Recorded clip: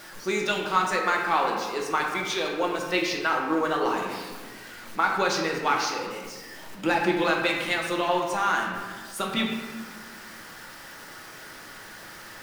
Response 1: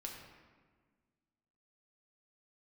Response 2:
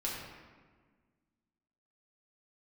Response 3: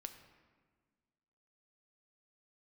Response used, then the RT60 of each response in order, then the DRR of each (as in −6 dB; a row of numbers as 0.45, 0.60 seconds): 1; 1.5, 1.5, 1.6 seconds; −0.5, −5.0, 7.0 decibels